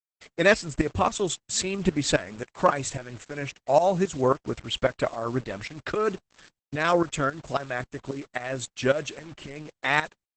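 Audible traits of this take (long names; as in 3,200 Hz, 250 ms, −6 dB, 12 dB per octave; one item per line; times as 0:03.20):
tremolo saw up 3.7 Hz, depth 80%
a quantiser's noise floor 8 bits, dither none
Opus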